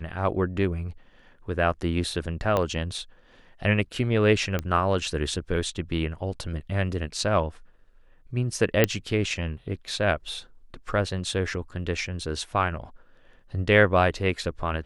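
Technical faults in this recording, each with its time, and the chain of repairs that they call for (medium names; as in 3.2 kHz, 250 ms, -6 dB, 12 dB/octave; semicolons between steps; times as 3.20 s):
2.57 s: pop -12 dBFS
4.59 s: pop -14 dBFS
8.84 s: pop -5 dBFS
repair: de-click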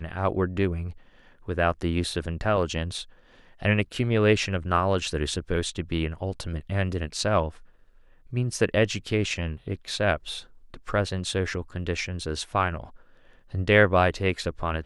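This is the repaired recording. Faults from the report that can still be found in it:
2.57 s: pop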